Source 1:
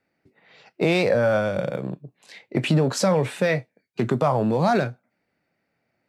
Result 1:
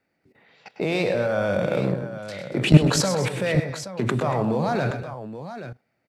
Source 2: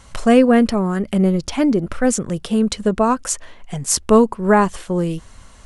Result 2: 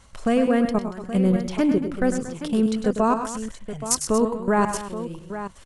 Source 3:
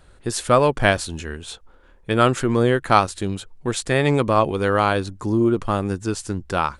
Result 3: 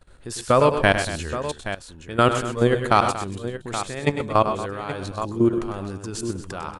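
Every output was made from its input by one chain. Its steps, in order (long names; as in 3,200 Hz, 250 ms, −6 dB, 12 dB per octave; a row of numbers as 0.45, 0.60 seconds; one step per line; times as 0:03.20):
output level in coarse steps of 17 dB
on a send: multi-tap delay 101/124/233/824 ms −9.5/−12.5/−14.5/−11.5 dB
on the sum: loudness normalisation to −23 LKFS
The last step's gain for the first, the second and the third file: +10.5, −1.5, +2.0 decibels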